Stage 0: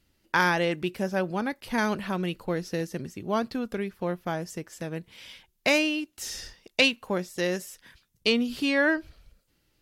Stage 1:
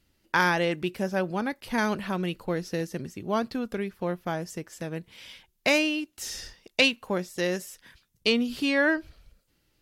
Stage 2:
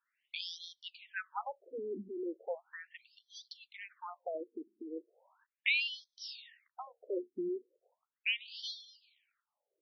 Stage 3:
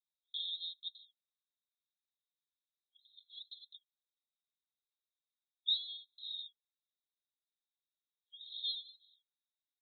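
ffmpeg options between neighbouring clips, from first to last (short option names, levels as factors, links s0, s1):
-af anull
-af "afftfilt=real='re*between(b*sr/1024,300*pow(4500/300,0.5+0.5*sin(2*PI*0.37*pts/sr))/1.41,300*pow(4500/300,0.5+0.5*sin(2*PI*0.37*pts/sr))*1.41)':imag='im*between(b*sr/1024,300*pow(4500/300,0.5+0.5*sin(2*PI*0.37*pts/sr))/1.41,300*pow(4500/300,0.5+0.5*sin(2*PI*0.37*pts/sr))*1.41)':win_size=1024:overlap=0.75,volume=0.631"
-af "asuperpass=centerf=3700:order=20:qfactor=4.7,aecho=1:1:1.9:0.79,volume=2.24"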